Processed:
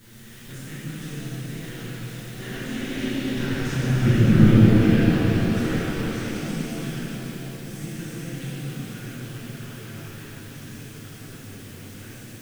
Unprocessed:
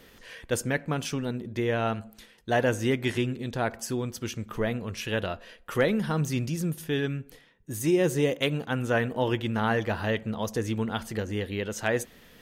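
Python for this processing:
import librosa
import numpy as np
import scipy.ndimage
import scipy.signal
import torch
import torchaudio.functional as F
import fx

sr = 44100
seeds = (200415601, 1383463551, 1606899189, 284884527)

p1 = fx.bin_compress(x, sr, power=0.4)
p2 = fx.doppler_pass(p1, sr, speed_mps=16, closest_m=6.5, pass_at_s=4.28)
p3 = fx.env_lowpass_down(p2, sr, base_hz=1900.0, full_db=-23.0)
p4 = fx.curve_eq(p3, sr, hz=(200.0, 680.0, 1300.0), db=(0, -29, -13))
p5 = fx.hpss(p4, sr, part='percussive', gain_db=8)
p6 = fx.high_shelf(p5, sr, hz=4700.0, db=6.0)
p7 = fx.quant_dither(p6, sr, seeds[0], bits=8, dither='triangular')
p8 = p6 + F.gain(torch.from_numpy(p7), -8.0).numpy()
p9 = fx.env_flanger(p8, sr, rest_ms=10.1, full_db=-19.5)
p10 = fx.echo_stepped(p9, sr, ms=139, hz=160.0, octaves=0.7, feedback_pct=70, wet_db=-3.5)
y = fx.rev_shimmer(p10, sr, seeds[1], rt60_s=3.5, semitones=7, shimmer_db=-8, drr_db=-9.5)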